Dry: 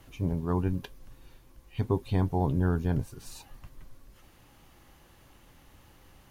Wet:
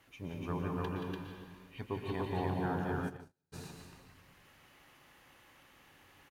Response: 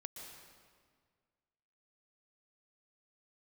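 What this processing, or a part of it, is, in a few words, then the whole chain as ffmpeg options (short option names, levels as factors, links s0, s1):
stadium PA: -filter_complex "[0:a]highpass=f=190:p=1,equalizer=f=2000:t=o:w=1.6:g=8,aecho=1:1:177.8|291.5:0.447|0.891[s0];[1:a]atrim=start_sample=2205[s1];[s0][s1]afir=irnorm=-1:irlink=0,asplit=3[s2][s3][s4];[s2]afade=t=out:st=3.08:d=0.02[s5];[s3]agate=range=0.00562:threshold=0.0316:ratio=16:detection=peak,afade=t=in:st=3.08:d=0.02,afade=t=out:st=3.52:d=0.02[s6];[s4]afade=t=in:st=3.52:d=0.02[s7];[s5][s6][s7]amix=inputs=3:normalize=0,volume=0.631"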